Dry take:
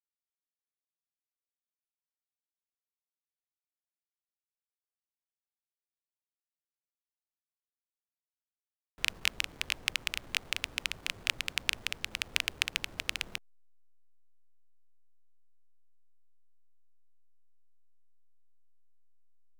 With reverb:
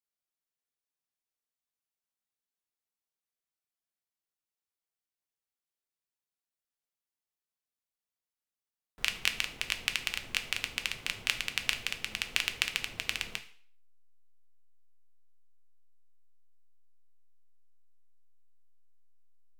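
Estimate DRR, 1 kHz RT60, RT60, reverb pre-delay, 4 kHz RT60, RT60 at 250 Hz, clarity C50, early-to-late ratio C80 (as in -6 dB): 6.5 dB, 0.50 s, 0.50 s, 3 ms, 0.50 s, 0.55 s, 13.0 dB, 17.0 dB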